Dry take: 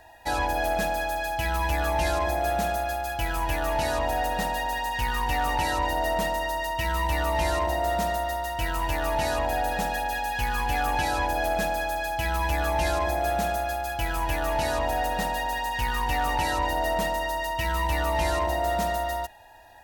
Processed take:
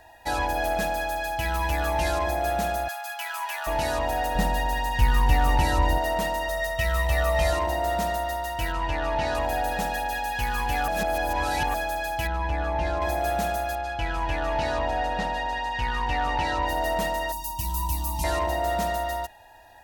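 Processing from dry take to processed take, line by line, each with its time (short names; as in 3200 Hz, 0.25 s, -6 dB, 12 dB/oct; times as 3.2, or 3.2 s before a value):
2.88–3.67 HPF 850 Hz 24 dB/oct
4.35–5.98 low shelf 230 Hz +11.5 dB
6.48–7.53 comb 1.6 ms
8.72–9.35 LPF 4500 Hz
10.88–11.74 reverse
12.27–13.02 tape spacing loss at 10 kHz 22 dB
13.75–16.67 LPF 4700 Hz
17.32–18.24 EQ curve 210 Hz 0 dB, 320 Hz -6 dB, 500 Hz -29 dB, 980 Hz -2 dB, 1500 Hz -30 dB, 2500 Hz -12 dB, 5300 Hz +2 dB, 13000 Hz +10 dB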